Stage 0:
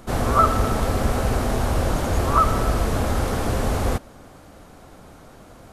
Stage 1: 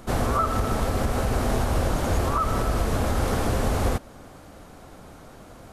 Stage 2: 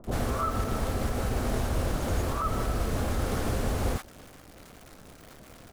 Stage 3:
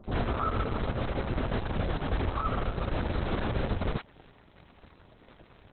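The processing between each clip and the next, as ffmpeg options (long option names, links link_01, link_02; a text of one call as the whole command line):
ffmpeg -i in.wav -af "alimiter=limit=-13.5dB:level=0:latency=1:release=223" out.wav
ffmpeg -i in.wav -filter_complex "[0:a]acrusher=bits=8:dc=4:mix=0:aa=0.000001,acrossover=split=880[link_01][link_02];[link_02]adelay=40[link_03];[link_01][link_03]amix=inputs=2:normalize=0,volume=-4.5dB" out.wav
ffmpeg -i in.wav -ar 48000 -c:a libopus -b:a 6k out.opus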